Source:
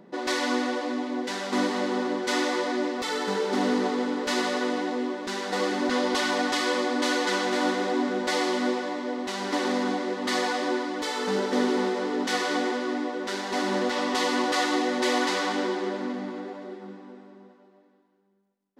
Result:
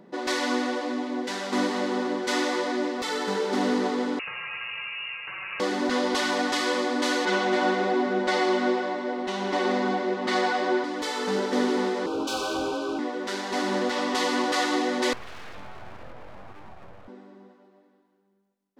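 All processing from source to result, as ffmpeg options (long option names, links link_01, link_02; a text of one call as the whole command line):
ffmpeg -i in.wav -filter_complex "[0:a]asettb=1/sr,asplit=3[link_01][link_02][link_03];[link_01]atrim=end=4.194[link_04];[link_02]atrim=start=4.19:end=5.6,asetpts=PTS-STARTPTS,afade=type=in:duration=0.004:curve=qsin,afade=type=out:start_time=1.406:duration=0.004:curve=qsin,highpass=frequency=470:poles=1,acompressor=threshold=-30dB:ratio=6:attack=3.2:release=140:knee=1:detection=peak,lowpass=frequency=2600:width_type=q:width=0.5098,lowpass=frequency=2600:width_type=q:width=0.6013,lowpass=frequency=2600:width_type=q:width=0.9,lowpass=frequency=2600:width_type=q:width=2.563,afreqshift=-3100[link_05];[link_03]atrim=start=5.596[link_06];[link_04][link_05]acrossfade=duration=0.004:curve1=hsin:curve2=qsin[link_07];[link_07][link_06]acrossfade=duration=0.004:curve1=qsin:curve2=hsin,asettb=1/sr,asplit=3[link_08][link_09][link_10];[link_08]atrim=end=7.254[link_11];[link_09]atrim=start=7.25:end=10.84,asetpts=PTS-STARTPTS,afade=type=in:duration=0.004:curve=qsin,afade=type=out:start_time=3.586:duration=0.004:curve=qsin,aemphasis=mode=reproduction:type=50fm,aecho=1:1:5.4:0.63,atrim=end_sample=158319[link_12];[link_10]atrim=start=10.836[link_13];[link_11][link_12]acrossfade=duration=0.004:curve1=hsin:curve2=qsin[link_14];[link_14][link_13]acrossfade=duration=0.004:curve1=qsin:curve2=hsin,asettb=1/sr,asplit=3[link_15][link_16][link_17];[link_15]atrim=end=12.064[link_18];[link_16]atrim=start=12.06:end=12.99,asetpts=PTS-STARTPTS,afade=type=in:duration=0.004:curve=qsin,afade=type=out:start_time=0.926:duration=0.004:curve=qsin,volume=24dB,asoftclip=hard,volume=-24dB,afreqshift=33,asuperstop=centerf=1900:order=12:qfactor=2.3[link_19];[link_17]atrim=start=12.986[link_20];[link_18][link_19]acrossfade=duration=0.004:curve1=hsin:curve2=qsin[link_21];[link_21][link_20]acrossfade=duration=0.004:curve1=qsin:curve2=hsin,asettb=1/sr,asplit=3[link_22][link_23][link_24];[link_22]atrim=end=15.134[link_25];[link_23]atrim=start=15.13:end=17.08,asetpts=PTS-STARTPTS,afade=type=in:duration=0.004:curve=qsin,afade=type=out:start_time=1.946:duration=0.004:curve=qsin,highpass=190,lowpass=2600,acompressor=threshold=-39dB:ratio=3:attack=3.2:release=140:knee=1:detection=peak,aeval=exprs='abs(val(0))':channel_layout=same[link_26];[link_24]atrim=start=17.076[link_27];[link_25][link_26]acrossfade=duration=0.004:curve1=hsin:curve2=qsin[link_28];[link_28][link_27]acrossfade=duration=0.004:curve1=qsin:curve2=hsin" out.wav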